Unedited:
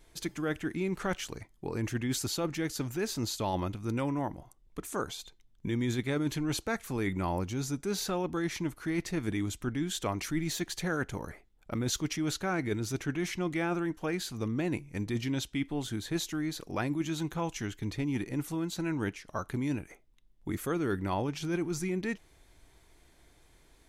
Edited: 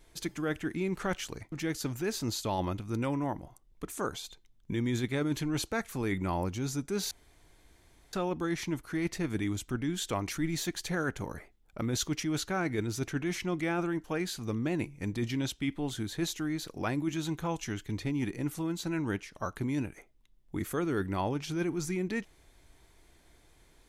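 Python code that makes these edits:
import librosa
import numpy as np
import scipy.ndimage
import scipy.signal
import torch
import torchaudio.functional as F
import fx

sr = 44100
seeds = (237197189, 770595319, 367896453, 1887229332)

y = fx.edit(x, sr, fx.cut(start_s=1.52, length_s=0.95),
    fx.insert_room_tone(at_s=8.06, length_s=1.02), tone=tone)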